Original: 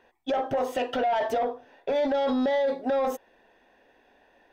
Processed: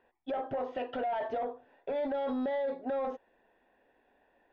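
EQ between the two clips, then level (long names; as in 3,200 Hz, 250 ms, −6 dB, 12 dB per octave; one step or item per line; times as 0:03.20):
Gaussian smoothing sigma 2.5 samples
−7.5 dB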